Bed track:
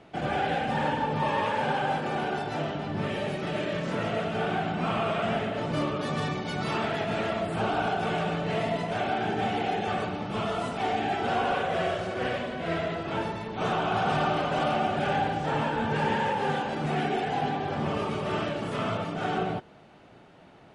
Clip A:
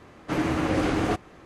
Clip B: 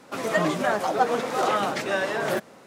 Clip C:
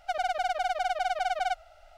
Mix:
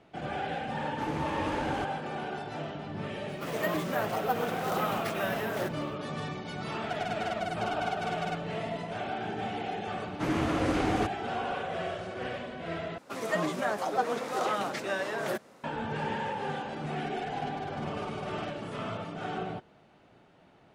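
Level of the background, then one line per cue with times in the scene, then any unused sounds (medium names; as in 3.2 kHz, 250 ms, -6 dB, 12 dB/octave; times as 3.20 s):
bed track -6.5 dB
0.69 s: add A -10.5 dB
3.29 s: add B -8 dB + sample-and-hold 3×
6.81 s: add C -4 dB + comb of notches 390 Hz
9.91 s: add A -4 dB
12.98 s: replace with B -6.5 dB
16.97 s: add C -13 dB + local Wiener filter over 41 samples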